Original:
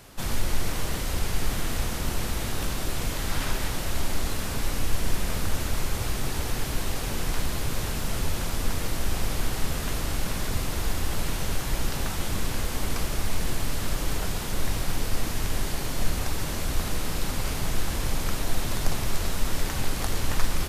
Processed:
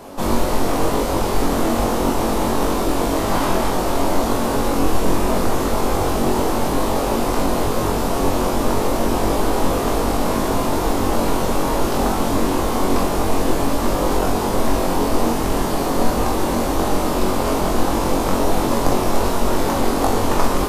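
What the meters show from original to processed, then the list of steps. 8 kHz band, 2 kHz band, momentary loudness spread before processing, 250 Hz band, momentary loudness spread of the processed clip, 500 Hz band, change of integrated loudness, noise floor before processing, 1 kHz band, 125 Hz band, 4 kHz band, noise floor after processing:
+4.5 dB, +5.5 dB, 1 LU, +15.5 dB, 1 LU, +17.5 dB, +10.5 dB, −31 dBFS, +16.0 dB, +5.0 dB, +4.5 dB, −21 dBFS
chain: flat-topped bell 500 Hz +13 dB 2.8 octaves
flutter between parallel walls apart 3.7 metres, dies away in 0.29 s
level +2.5 dB

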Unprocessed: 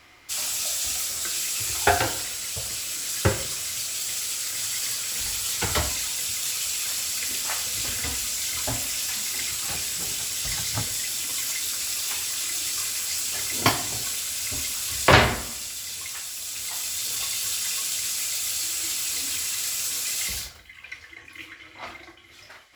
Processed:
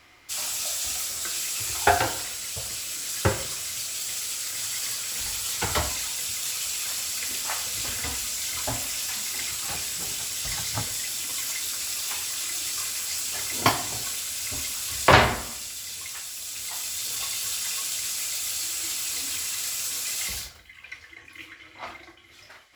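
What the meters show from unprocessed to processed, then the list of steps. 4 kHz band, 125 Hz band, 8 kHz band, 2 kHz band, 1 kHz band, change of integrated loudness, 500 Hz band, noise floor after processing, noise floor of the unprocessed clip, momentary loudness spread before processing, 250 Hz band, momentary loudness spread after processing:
−2.0 dB, −2.0 dB, −2.0 dB, −1.0 dB, +1.5 dB, −1.5 dB, −0.5 dB, −51 dBFS, −49 dBFS, 8 LU, −1.5 dB, 9 LU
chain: dynamic equaliser 910 Hz, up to +4 dB, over −43 dBFS, Q 1.1
level −2 dB

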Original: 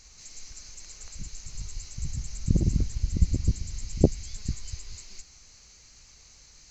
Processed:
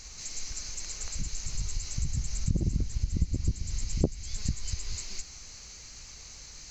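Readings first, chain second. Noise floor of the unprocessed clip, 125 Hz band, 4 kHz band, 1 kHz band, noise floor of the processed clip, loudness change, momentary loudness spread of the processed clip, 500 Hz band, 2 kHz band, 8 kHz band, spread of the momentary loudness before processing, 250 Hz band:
−54 dBFS, −3.0 dB, +4.5 dB, −2.0 dB, −47 dBFS, −4.0 dB, 14 LU, −7.0 dB, +4.5 dB, can't be measured, 18 LU, −5.0 dB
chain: downward compressor 3 to 1, threshold −34 dBFS, peak gain reduction 15.5 dB
level +7 dB

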